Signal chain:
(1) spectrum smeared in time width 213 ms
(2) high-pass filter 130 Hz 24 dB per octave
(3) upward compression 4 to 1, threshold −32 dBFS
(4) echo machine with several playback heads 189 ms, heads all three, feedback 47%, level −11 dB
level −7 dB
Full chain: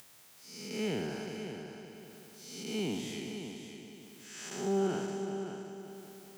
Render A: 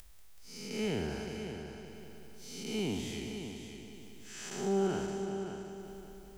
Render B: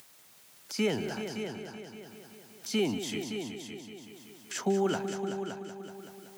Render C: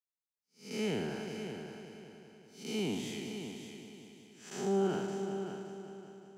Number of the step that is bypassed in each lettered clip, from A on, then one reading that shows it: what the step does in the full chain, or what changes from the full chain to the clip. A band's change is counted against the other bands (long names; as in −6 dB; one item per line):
2, 125 Hz band +1.5 dB
1, 125 Hz band −2.0 dB
3, 8 kHz band −3.0 dB